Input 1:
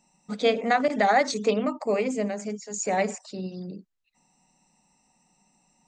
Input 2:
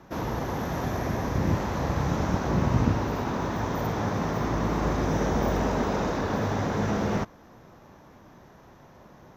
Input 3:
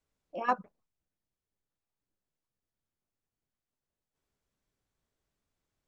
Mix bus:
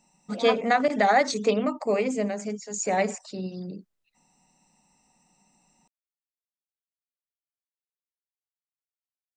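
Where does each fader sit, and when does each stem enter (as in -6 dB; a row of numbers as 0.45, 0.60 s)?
+0.5 dB, off, -1.5 dB; 0.00 s, off, 0.00 s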